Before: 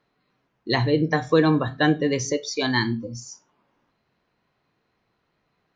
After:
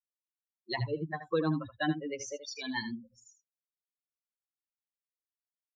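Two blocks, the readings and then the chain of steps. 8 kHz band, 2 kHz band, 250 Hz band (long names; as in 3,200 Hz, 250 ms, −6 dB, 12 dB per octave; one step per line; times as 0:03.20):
can't be measured, −12.0 dB, −13.0 dB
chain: spectral dynamics exaggerated over time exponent 3
single-tap delay 77 ms −11.5 dB
level −7.5 dB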